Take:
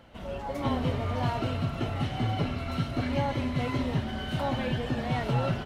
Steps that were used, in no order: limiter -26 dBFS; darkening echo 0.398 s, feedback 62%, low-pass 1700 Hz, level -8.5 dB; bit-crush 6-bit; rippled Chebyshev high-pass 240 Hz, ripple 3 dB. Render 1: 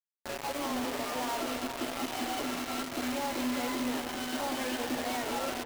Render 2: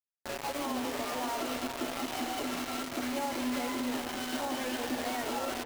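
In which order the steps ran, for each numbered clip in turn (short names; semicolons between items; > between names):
rippled Chebyshev high-pass > limiter > bit-crush > darkening echo; rippled Chebyshev high-pass > bit-crush > limiter > darkening echo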